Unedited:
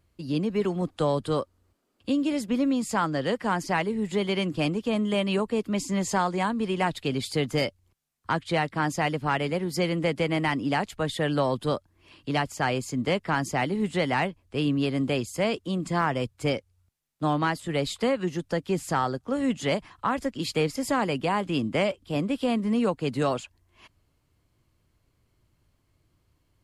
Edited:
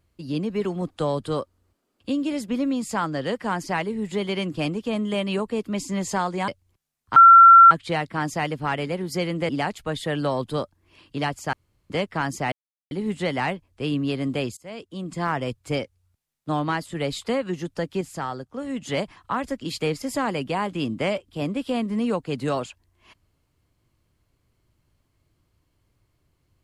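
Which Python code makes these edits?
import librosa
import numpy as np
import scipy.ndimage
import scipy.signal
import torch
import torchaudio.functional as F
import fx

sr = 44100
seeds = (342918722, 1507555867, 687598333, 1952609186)

y = fx.edit(x, sr, fx.cut(start_s=6.48, length_s=1.17),
    fx.insert_tone(at_s=8.33, length_s=0.55, hz=1360.0, db=-6.0),
    fx.cut(start_s=10.11, length_s=0.51),
    fx.room_tone_fill(start_s=12.66, length_s=0.37),
    fx.insert_silence(at_s=13.65, length_s=0.39),
    fx.fade_in_from(start_s=15.31, length_s=0.75, floor_db=-23.0),
    fx.clip_gain(start_s=18.75, length_s=0.81, db=-4.5), tone=tone)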